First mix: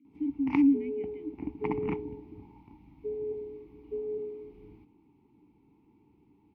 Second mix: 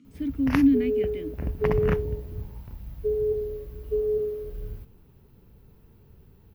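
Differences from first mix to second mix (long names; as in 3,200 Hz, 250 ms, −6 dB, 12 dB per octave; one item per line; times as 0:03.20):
background −8.5 dB
master: remove formant filter u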